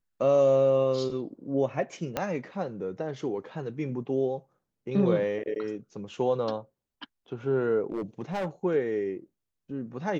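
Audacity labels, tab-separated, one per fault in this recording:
2.170000	2.170000	pop -13 dBFS
7.900000	8.480000	clipped -27 dBFS

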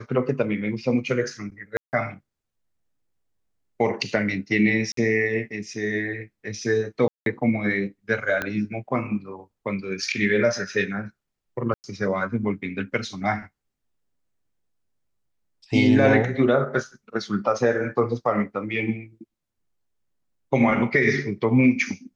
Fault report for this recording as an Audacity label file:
1.770000	1.930000	gap 0.159 s
4.920000	4.970000	gap 53 ms
7.080000	7.260000	gap 0.182 s
8.420000	8.420000	pop -12 dBFS
11.740000	11.840000	gap 99 ms

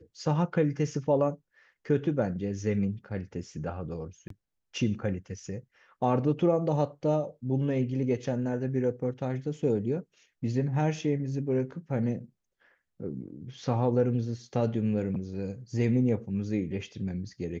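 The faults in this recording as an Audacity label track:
4.280000	4.300000	gap 23 ms

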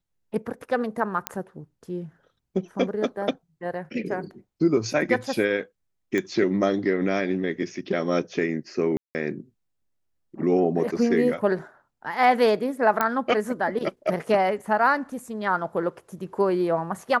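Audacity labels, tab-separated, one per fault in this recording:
1.270000	1.270000	pop -7 dBFS
6.180000	6.180000	pop -14 dBFS
8.970000	9.150000	gap 0.179 s
13.010000	13.010000	pop -8 dBFS

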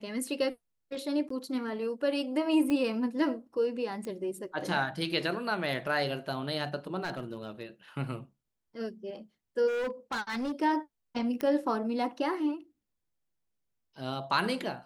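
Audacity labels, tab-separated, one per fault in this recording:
1.290000	1.300000	gap 14 ms
2.700000	2.700000	pop -20 dBFS
4.050000	4.050000	pop -27 dBFS
7.030000	7.630000	clipped -30 dBFS
9.670000	10.520000	clipped -29.5 dBFS
11.410000	11.410000	pop -19 dBFS

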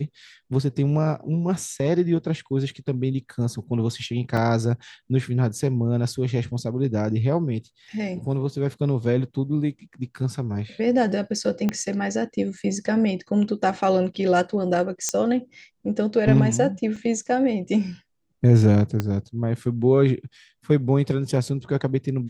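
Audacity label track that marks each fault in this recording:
4.370000	4.370000	gap 3.7 ms
11.690000	11.690000	pop -11 dBFS
15.090000	15.090000	pop -9 dBFS
16.960000	16.960000	gap 3.9 ms
19.000000	19.000000	pop -11 dBFS

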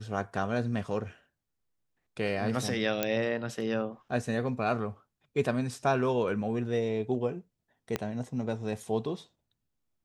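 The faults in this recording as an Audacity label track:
3.030000	3.030000	pop -11 dBFS
7.960000	7.960000	pop -15 dBFS

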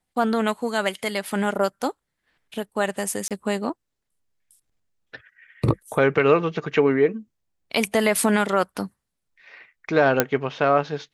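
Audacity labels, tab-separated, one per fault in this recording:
3.280000	3.310000	gap 27 ms
10.200000	10.200000	pop -1 dBFS

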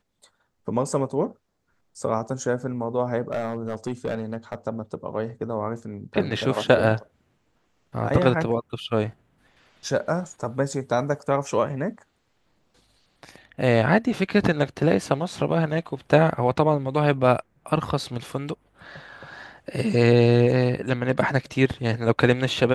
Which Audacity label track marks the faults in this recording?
3.310000	4.550000	clipped -21.5 dBFS

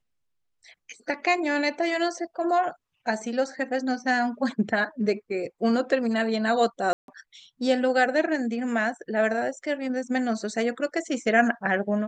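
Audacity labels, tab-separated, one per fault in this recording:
6.930000	7.080000	gap 0.152 s

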